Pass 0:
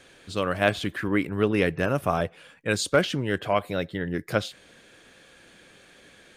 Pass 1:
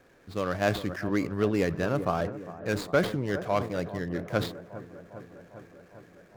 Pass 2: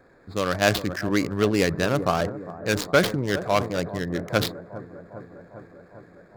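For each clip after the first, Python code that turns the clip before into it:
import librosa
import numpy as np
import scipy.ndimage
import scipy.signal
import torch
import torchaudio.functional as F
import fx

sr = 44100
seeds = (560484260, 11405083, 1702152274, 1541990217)

y1 = scipy.signal.medfilt(x, 15)
y1 = fx.echo_wet_lowpass(y1, sr, ms=403, feedback_pct=71, hz=1200.0, wet_db=-14.5)
y1 = fx.sustainer(y1, sr, db_per_s=120.0)
y1 = y1 * 10.0 ** (-3.0 / 20.0)
y2 = fx.wiener(y1, sr, points=15)
y2 = fx.high_shelf(y2, sr, hz=2200.0, db=11.5)
y2 = y2 * 10.0 ** (4.0 / 20.0)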